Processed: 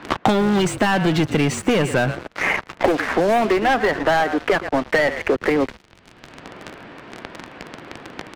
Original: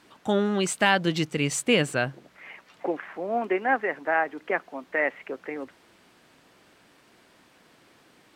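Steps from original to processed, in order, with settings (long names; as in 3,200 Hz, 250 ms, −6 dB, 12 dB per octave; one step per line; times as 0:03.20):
in parallel at −0.5 dB: downward compressor 10 to 1, threshold −38 dBFS, peak gain reduction 22.5 dB
on the sum: low-pass that shuts in the quiet parts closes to 2,900 Hz, open at −20.5 dBFS
on a send: echo with shifted repeats 114 ms, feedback 36%, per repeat −49 Hz, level −19 dB
on the sum: leveller curve on the samples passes 5
high-shelf EQ 3,700 Hz −9 dB
multiband upward and downward compressor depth 100%
level −6 dB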